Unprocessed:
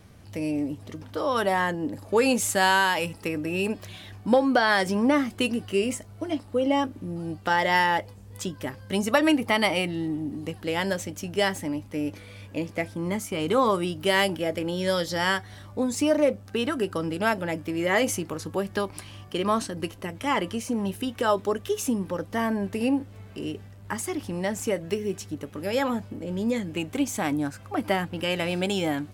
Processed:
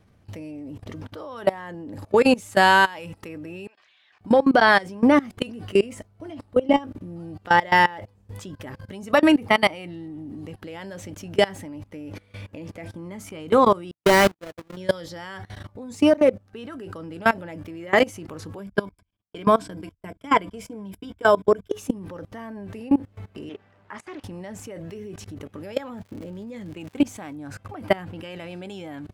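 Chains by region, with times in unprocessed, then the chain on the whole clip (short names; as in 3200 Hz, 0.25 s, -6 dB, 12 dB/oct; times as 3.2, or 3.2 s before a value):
3.67–4.21 HPF 1500 Hz + air absorption 140 m + compressor 2:1, threshold -59 dBFS
13.91–14.77 half-waves squared off + gate -22 dBFS, range -58 dB
18.58–21.71 gate -37 dBFS, range -45 dB + ripple EQ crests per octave 1.7, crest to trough 10 dB
23.49–24.24 band-pass 1300 Hz, Q 0.6 + Doppler distortion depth 0.16 ms
25.77–27.34 expander -34 dBFS + crackle 160/s -34 dBFS
whole clip: level quantiser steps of 22 dB; high shelf 4000 Hz -8.5 dB; gain +8 dB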